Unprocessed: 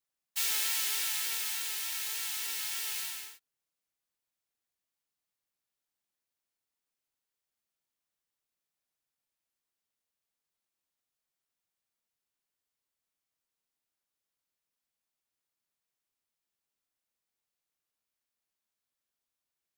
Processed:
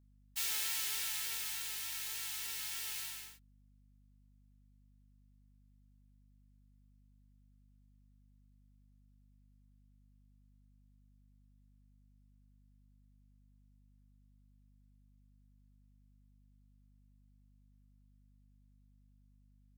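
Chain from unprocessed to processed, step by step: spectral gate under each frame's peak -30 dB strong; hum 50 Hz, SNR 18 dB; gain -5.5 dB

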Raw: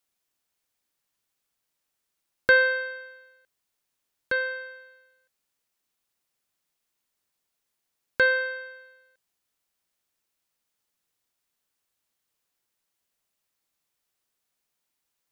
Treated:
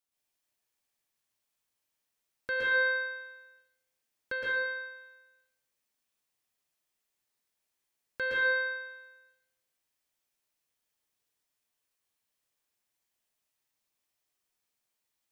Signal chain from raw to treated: de-hum 169.7 Hz, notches 16; limiter -15.5 dBFS, peak gain reduction 7.5 dB; plate-style reverb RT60 0.73 s, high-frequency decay 1×, pre-delay 0.105 s, DRR -5.5 dB; gain -9 dB

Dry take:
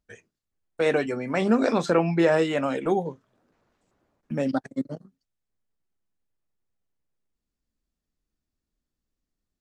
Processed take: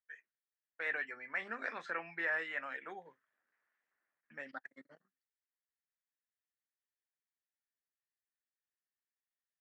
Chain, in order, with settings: band-pass 1800 Hz, Q 4.8; gain -1 dB

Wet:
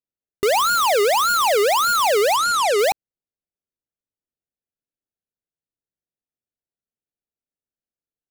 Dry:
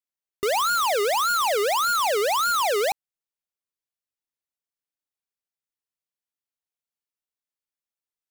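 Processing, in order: Wiener smoothing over 41 samples; 2.36–2.79 Chebyshev low-pass 10000 Hz, order 2; gain +7 dB

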